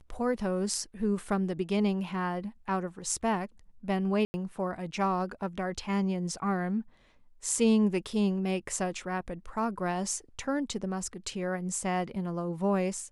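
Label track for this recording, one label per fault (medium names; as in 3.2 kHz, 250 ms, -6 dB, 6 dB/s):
4.250000	4.340000	dropout 90 ms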